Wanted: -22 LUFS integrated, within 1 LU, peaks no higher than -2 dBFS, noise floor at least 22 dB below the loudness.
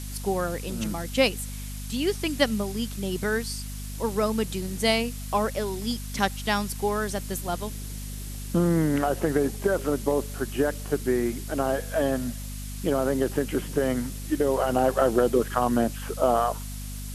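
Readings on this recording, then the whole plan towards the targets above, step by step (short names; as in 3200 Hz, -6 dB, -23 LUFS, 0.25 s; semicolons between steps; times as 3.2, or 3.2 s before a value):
hum 50 Hz; harmonics up to 250 Hz; hum level -33 dBFS; noise floor -35 dBFS; noise floor target -49 dBFS; loudness -26.5 LUFS; peak -7.0 dBFS; loudness target -22.0 LUFS
-> notches 50/100/150/200/250 Hz; denoiser 14 dB, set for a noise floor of -35 dBFS; gain +4.5 dB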